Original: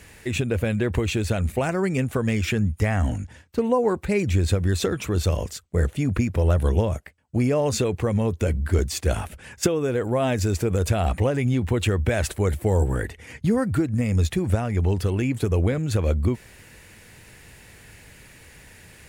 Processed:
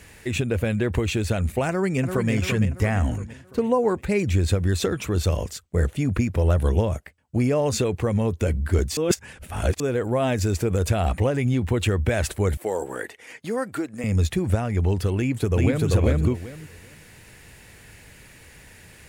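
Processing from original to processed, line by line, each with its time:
1.69–2.31 echo throw 0.34 s, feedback 50%, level -6 dB
8.97–9.8 reverse
12.57–14.04 HPF 390 Hz
15.17–15.88 echo throw 0.39 s, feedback 20%, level -0.5 dB

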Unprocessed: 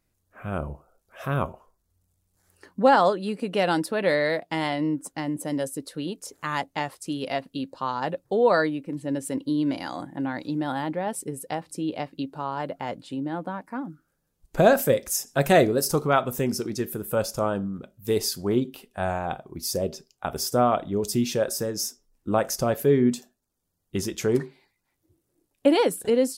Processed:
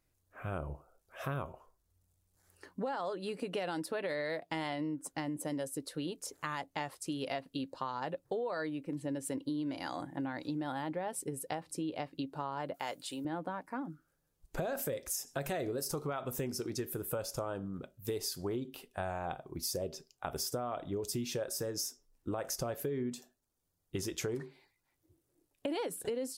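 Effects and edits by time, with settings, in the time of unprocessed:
12.74–13.25 RIAA curve recording
whole clip: bell 210 Hz -11.5 dB 0.22 oct; limiter -16 dBFS; compressor, threshold -30 dBFS; gain -3.5 dB

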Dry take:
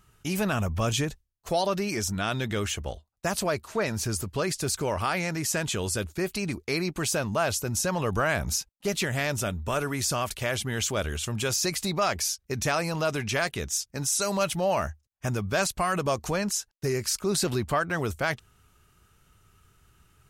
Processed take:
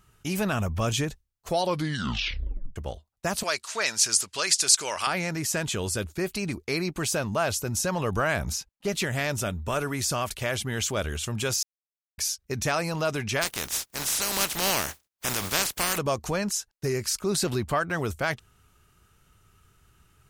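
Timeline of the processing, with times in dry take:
1.59 tape stop 1.17 s
3.43–5.07 weighting filter ITU-R 468
8.52–8.93 high shelf 6500 Hz -7 dB
11.63–12.18 mute
13.41–15.97 spectral contrast lowered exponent 0.28

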